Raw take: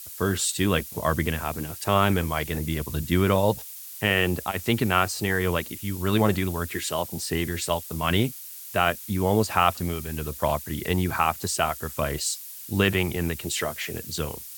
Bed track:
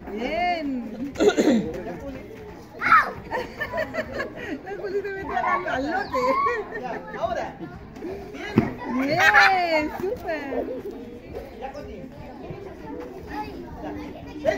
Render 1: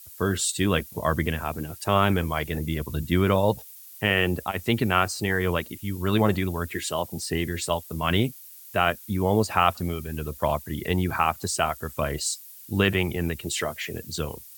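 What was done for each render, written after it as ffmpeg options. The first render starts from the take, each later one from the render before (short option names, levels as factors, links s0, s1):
-af "afftdn=nr=8:nf=-40"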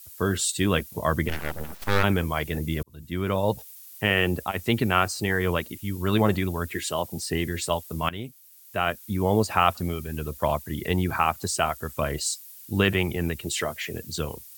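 -filter_complex "[0:a]asplit=3[s0][s1][s2];[s0]afade=t=out:st=1.28:d=0.02[s3];[s1]aeval=exprs='abs(val(0))':c=same,afade=t=in:st=1.28:d=0.02,afade=t=out:st=2.02:d=0.02[s4];[s2]afade=t=in:st=2.02:d=0.02[s5];[s3][s4][s5]amix=inputs=3:normalize=0,asplit=3[s6][s7][s8];[s6]atrim=end=2.83,asetpts=PTS-STARTPTS,afade=t=out:st=2.826:d=0.004:c=hsin[s9];[s7]atrim=start=2.83:end=8.09,asetpts=PTS-STARTPTS,afade=t=in:d=0.81,afade=t=out:st=5.256:d=0.004:c=hsin:silence=0.158489[s10];[s8]atrim=start=8.09,asetpts=PTS-STARTPTS,afade=t=in:d=1.16:silence=0.158489[s11];[s9][s10][s11]concat=n=3:v=0:a=1"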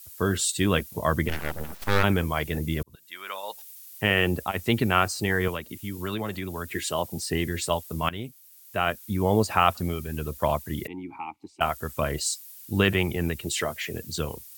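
-filter_complex "[0:a]asettb=1/sr,asplit=3[s0][s1][s2];[s0]atrim=end=2.954[s3];[s1]atrim=start=2.95:end=3.97,asetpts=PTS-STARTPTS,afade=t=in:d=0.004:c=qsin,afade=t=out:st=1.016:d=0.004:c=qsin,highpass=1200[s4];[s2]atrim=start=3.966[s5];[s3][s4]acrossfade=d=0.004:c1=hsin:c2=qsin[s6];[s6][s5]acrossfade=d=0.004:c1=qsin:c2=hsin,asettb=1/sr,asplit=3[s7][s8][s9];[s7]atrim=end=5.484[s10];[s8]atrim=start=5.48:end=6.71,asetpts=PTS-STARTPTS,afade=t=in:d=0.004:c=qsin,afade=t=out:st=1.226:d=0.004:c=qsin,acrossover=split=200|1600[s11][s12][s13];[s11]acompressor=threshold=0.0126:ratio=4[s14];[s12]acompressor=threshold=0.0251:ratio=4[s15];[s13]acompressor=threshold=0.0141:ratio=4[s16];[s14][s15][s16]amix=inputs=3:normalize=0[s17];[s9]atrim=start=6.706[s18];[s10][s17]acrossfade=d=0.004:c1=hsin:c2=qsin[s19];[s19][s18]acrossfade=d=0.004:c1=qsin:c2=hsin,asettb=1/sr,asplit=3[s20][s21][s22];[s20]atrim=end=10.874[s23];[s21]atrim=start=10.87:end=11.61,asetpts=PTS-STARTPTS,afade=t=in:d=0.004:c=qsin,afade=t=out:st=0.736:d=0.004:c=qsin,asplit=3[s24][s25][s26];[s24]bandpass=f=300:t=q:w=8,volume=1[s27];[s25]bandpass=f=870:t=q:w=8,volume=0.501[s28];[s26]bandpass=f=2240:t=q:w=8,volume=0.355[s29];[s27][s28][s29]amix=inputs=3:normalize=0[s30];[s22]atrim=start=11.606[s31];[s23][s30]acrossfade=d=0.004:c1=hsin:c2=qsin[s32];[s32][s31]acrossfade=d=0.004:c1=qsin:c2=hsin"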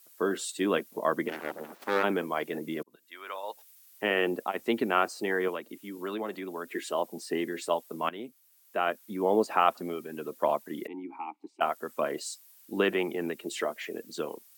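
-af "highpass=f=260:w=0.5412,highpass=f=260:w=1.3066,highshelf=f=2000:g=-11.5"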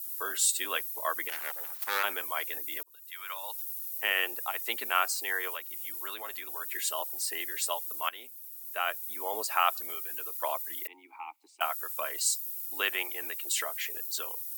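-af "highpass=970,aemphasis=mode=production:type=75fm"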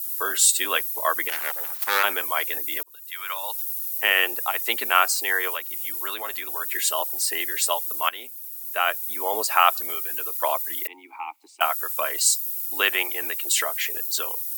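-af "volume=2.66"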